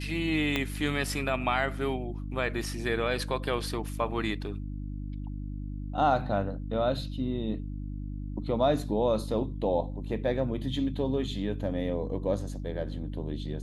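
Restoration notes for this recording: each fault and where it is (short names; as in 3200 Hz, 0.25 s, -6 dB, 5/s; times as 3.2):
hum 50 Hz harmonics 6 -36 dBFS
0.56 pop -14 dBFS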